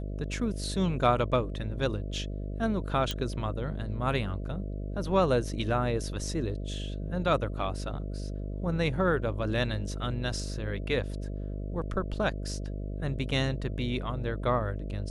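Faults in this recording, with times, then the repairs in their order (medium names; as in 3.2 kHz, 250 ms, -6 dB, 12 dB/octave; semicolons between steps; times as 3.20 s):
buzz 50 Hz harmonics 13 -35 dBFS
3.11 s: pop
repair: de-click; de-hum 50 Hz, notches 13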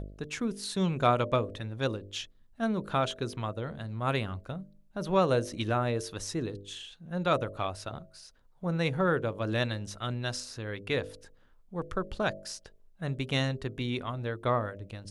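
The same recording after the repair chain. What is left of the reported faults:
nothing left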